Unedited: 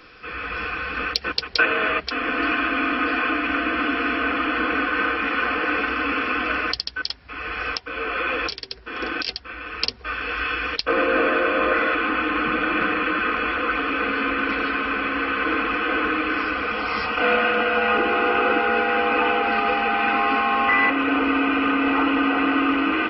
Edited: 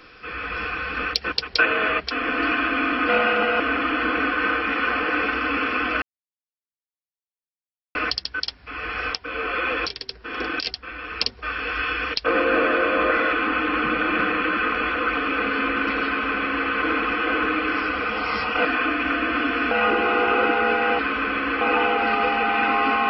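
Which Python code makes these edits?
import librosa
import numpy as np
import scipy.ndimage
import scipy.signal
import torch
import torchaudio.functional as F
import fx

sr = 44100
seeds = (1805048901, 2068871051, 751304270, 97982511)

y = fx.edit(x, sr, fx.swap(start_s=3.09, length_s=1.06, other_s=17.27, other_length_s=0.51),
    fx.insert_silence(at_s=6.57, length_s=1.93),
    fx.duplicate(start_s=14.68, length_s=0.62, to_s=19.06), tone=tone)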